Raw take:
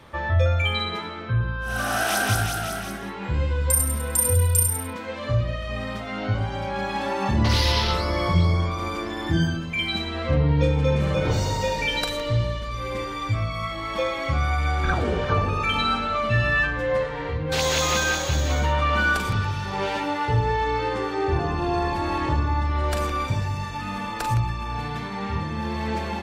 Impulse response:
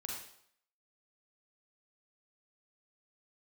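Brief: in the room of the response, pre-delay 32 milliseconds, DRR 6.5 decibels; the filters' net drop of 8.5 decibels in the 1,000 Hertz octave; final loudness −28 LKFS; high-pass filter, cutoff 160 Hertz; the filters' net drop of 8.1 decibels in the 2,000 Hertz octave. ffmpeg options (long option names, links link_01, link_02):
-filter_complex "[0:a]highpass=160,equalizer=frequency=1000:width_type=o:gain=-9,equalizer=frequency=2000:width_type=o:gain=-7.5,asplit=2[link_01][link_02];[1:a]atrim=start_sample=2205,adelay=32[link_03];[link_02][link_03]afir=irnorm=-1:irlink=0,volume=-6dB[link_04];[link_01][link_04]amix=inputs=2:normalize=0"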